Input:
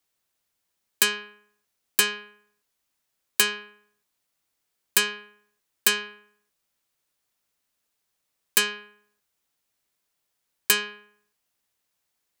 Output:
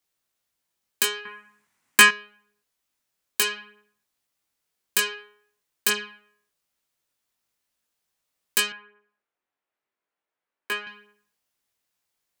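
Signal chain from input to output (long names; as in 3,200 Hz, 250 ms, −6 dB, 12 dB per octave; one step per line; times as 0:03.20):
0:01.25–0:02.09: octave-band graphic EQ 125/250/1,000/2,000/8,000 Hz +12/+10/+12/+12/+7 dB
chorus effect 0.47 Hz, delay 17.5 ms, depth 4.4 ms
0:08.72–0:10.87: three-way crossover with the lows and the highs turned down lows −14 dB, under 250 Hz, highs −19 dB, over 2,500 Hz
level +1.5 dB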